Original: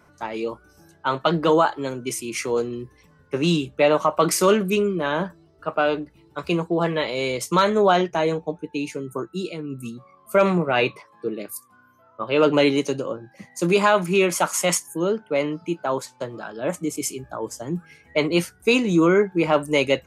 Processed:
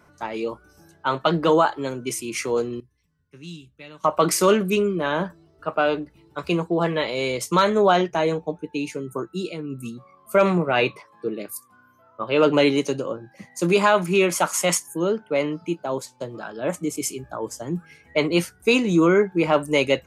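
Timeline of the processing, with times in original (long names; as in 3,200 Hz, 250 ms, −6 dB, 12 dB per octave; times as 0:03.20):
0:02.80–0:04.04: guitar amp tone stack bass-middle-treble 6-0-2
0:15.75–0:16.35: parametric band 1,500 Hz −8 dB 1.6 octaves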